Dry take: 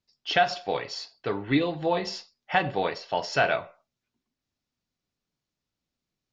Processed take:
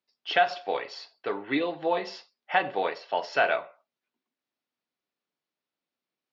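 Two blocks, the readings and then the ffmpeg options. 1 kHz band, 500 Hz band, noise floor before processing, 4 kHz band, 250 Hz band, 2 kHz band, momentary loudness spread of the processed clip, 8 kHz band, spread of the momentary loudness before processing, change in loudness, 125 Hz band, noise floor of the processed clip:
0.0 dB, -0.5 dB, under -85 dBFS, -3.5 dB, -4.5 dB, -0.5 dB, 11 LU, n/a, 9 LU, -1.0 dB, -14.5 dB, under -85 dBFS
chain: -af "highpass=340,lowpass=3.6k"

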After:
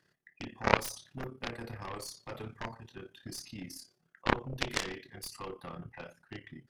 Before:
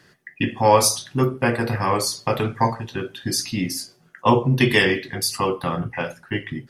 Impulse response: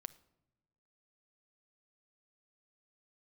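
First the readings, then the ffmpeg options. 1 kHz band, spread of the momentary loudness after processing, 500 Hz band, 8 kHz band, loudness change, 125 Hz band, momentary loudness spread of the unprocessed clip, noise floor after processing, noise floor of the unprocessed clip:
-15.5 dB, 18 LU, -17.5 dB, -19.5 dB, -16.0 dB, -19.0 dB, 13 LU, -75 dBFS, -56 dBFS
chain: -af "tremolo=f=34:d=0.667,aeval=exprs='0.708*(cos(1*acos(clip(val(0)/0.708,-1,1)))-cos(1*PI/2))+0.282*(cos(3*acos(clip(val(0)/0.708,-1,1)))-cos(3*PI/2))+0.00891*(cos(6*acos(clip(val(0)/0.708,-1,1)))-cos(6*PI/2))':c=same,volume=-1dB"

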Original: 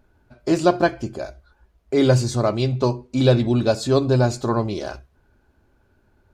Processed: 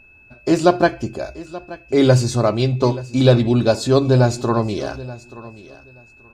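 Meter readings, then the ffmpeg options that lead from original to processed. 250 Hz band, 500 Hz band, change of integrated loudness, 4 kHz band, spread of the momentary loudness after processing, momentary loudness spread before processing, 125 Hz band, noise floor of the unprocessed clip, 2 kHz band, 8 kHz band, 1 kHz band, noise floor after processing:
+3.0 dB, +3.0 dB, +3.0 dB, +3.0 dB, 18 LU, 14 LU, +3.5 dB, -62 dBFS, +3.5 dB, +3.0 dB, +3.0 dB, -49 dBFS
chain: -af "aecho=1:1:879|1758:0.126|0.0227,aeval=exprs='val(0)+0.00316*sin(2*PI*2600*n/s)':c=same,volume=3dB"

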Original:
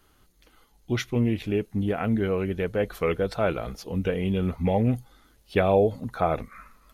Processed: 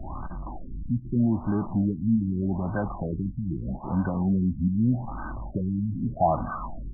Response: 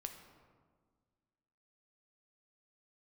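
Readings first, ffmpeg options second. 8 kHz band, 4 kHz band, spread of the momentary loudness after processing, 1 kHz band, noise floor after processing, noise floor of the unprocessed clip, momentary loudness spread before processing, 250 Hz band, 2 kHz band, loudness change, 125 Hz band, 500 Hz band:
n/a, under -40 dB, 12 LU, +0.5 dB, -38 dBFS, -61 dBFS, 8 LU, +2.5 dB, -8.5 dB, -1.0 dB, +1.0 dB, -9.0 dB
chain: -filter_complex "[0:a]aeval=exprs='val(0)+0.5*0.0355*sgn(val(0))':c=same,aecho=1:1:1.1:0.95,acrossover=split=150|1100[a][b][c];[a]acompressor=threshold=-33dB:ratio=6[d];[d][b][c]amix=inputs=3:normalize=0,lowpass=f=2.1k:t=q:w=10,asoftclip=type=tanh:threshold=-11dB,asplit=2[e][f];[f]aecho=0:1:237|474|711:0.0668|0.0341|0.0174[g];[e][g]amix=inputs=2:normalize=0,afftfilt=real='re*lt(b*sr/1024,290*pow(1600/290,0.5+0.5*sin(2*PI*0.81*pts/sr)))':imag='im*lt(b*sr/1024,290*pow(1600/290,0.5+0.5*sin(2*PI*0.81*pts/sr)))':win_size=1024:overlap=0.75"

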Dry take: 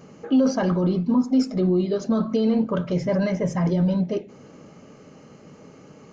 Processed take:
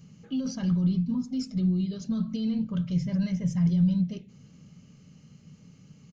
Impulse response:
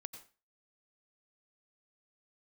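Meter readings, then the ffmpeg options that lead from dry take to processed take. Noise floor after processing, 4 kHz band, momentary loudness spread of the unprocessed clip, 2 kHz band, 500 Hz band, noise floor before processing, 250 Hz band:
-55 dBFS, -5.0 dB, 4 LU, under -10 dB, -20.5 dB, -48 dBFS, -5.0 dB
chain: -af "firequalizer=gain_entry='entry(170,0);entry(320,-19);entry(640,-22);entry(3000,-5)':delay=0.05:min_phase=1"

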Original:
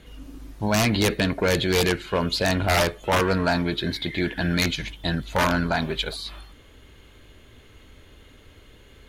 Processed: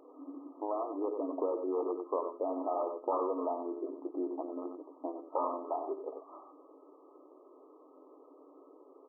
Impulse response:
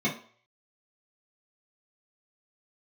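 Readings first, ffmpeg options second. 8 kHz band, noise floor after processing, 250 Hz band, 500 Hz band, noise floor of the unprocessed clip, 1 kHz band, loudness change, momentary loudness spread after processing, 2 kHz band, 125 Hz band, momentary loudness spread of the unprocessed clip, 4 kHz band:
under -40 dB, -59 dBFS, -13.0 dB, -8.5 dB, -51 dBFS, -9.5 dB, -13.0 dB, 11 LU, under -40 dB, under -40 dB, 7 LU, under -40 dB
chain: -af "aecho=1:1:92:0.376,acompressor=threshold=-31dB:ratio=3,afftfilt=real='re*between(b*sr/4096,260,1300)':imag='im*between(b*sr/4096,260,1300)':win_size=4096:overlap=0.75"

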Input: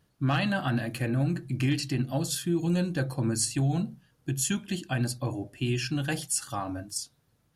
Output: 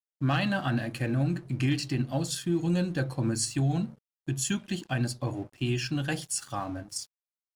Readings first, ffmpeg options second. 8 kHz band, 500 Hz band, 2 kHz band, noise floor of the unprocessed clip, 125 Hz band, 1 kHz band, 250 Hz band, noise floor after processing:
-2.5 dB, -0.5 dB, -0.5 dB, -69 dBFS, -0.5 dB, -0.5 dB, -0.5 dB, under -85 dBFS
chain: -af "lowpass=9.3k,aeval=exprs='sgn(val(0))*max(abs(val(0))-0.00251,0)':c=same"

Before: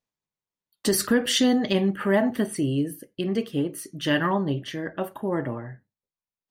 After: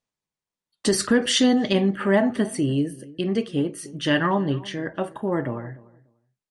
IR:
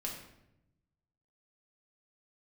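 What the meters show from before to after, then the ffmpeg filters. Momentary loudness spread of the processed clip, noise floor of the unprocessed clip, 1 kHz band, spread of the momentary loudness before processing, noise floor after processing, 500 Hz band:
11 LU, under -85 dBFS, +2.0 dB, 11 LU, under -85 dBFS, +2.0 dB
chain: -filter_complex "[0:a]asplit=2[a][b];[b]adelay=294,lowpass=f=1.3k:p=1,volume=-20dB,asplit=2[c][d];[d]adelay=294,lowpass=f=1.3k:p=1,volume=0.18[e];[c][e]amix=inputs=2:normalize=0[f];[a][f]amix=inputs=2:normalize=0,aresample=22050,aresample=44100,volume=2dB"

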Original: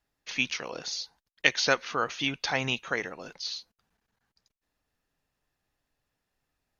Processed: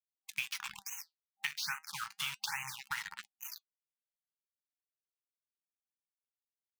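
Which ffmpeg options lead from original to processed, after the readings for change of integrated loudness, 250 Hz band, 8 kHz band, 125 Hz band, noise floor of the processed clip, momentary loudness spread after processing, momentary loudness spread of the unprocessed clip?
-10.0 dB, under -25 dB, n/a, -18.0 dB, under -85 dBFS, 9 LU, 11 LU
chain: -af "aecho=1:1:43|250:0.266|0.237,acrusher=bits=4:mix=0:aa=0.000001,lowshelf=f=350:g=-9,afftdn=nr=15:nf=-45,afftfilt=real='re*(1-between(b*sr/4096,210,790))':imag='im*(1-between(b*sr/4096,210,790))':win_size=4096:overlap=0.75,highpass=f=57:p=1,acompressor=threshold=-34dB:ratio=12,flanger=delay=2.1:depth=4.7:regen=79:speed=0.32:shape=sinusoidal,afftfilt=real='re*(1-between(b*sr/1024,290*pow(4300/290,0.5+0.5*sin(2*PI*1.2*pts/sr))/1.41,290*pow(4300/290,0.5+0.5*sin(2*PI*1.2*pts/sr))*1.41))':imag='im*(1-between(b*sr/1024,290*pow(4300/290,0.5+0.5*sin(2*PI*1.2*pts/sr))/1.41,290*pow(4300/290,0.5+0.5*sin(2*PI*1.2*pts/sr))*1.41))':win_size=1024:overlap=0.75,volume=5dB"

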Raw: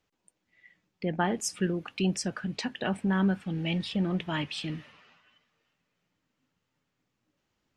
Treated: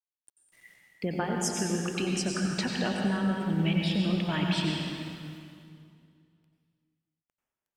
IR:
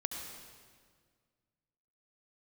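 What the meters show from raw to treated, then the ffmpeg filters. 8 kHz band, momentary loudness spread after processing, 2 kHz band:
+3.0 dB, 11 LU, +1.0 dB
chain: -filter_complex "[0:a]acrusher=bits=10:mix=0:aa=0.000001,acompressor=threshold=-29dB:ratio=6[a];[1:a]atrim=start_sample=2205,asetrate=33516,aresample=44100[b];[a][b]afir=irnorm=-1:irlink=0,volume=2dB"

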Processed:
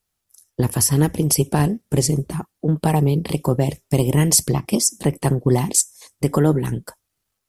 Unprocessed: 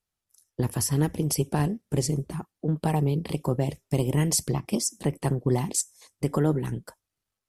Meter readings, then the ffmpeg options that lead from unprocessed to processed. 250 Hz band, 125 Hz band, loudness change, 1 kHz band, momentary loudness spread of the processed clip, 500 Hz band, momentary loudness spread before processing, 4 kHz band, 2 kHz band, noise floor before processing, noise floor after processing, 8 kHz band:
+7.0 dB, +7.0 dB, +7.5 dB, +7.0 dB, 8 LU, +7.0 dB, 7 LU, +8.0 dB, +7.0 dB, under -85 dBFS, -78 dBFS, +9.5 dB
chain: -af "highshelf=f=8.3k:g=5.5,volume=7dB"

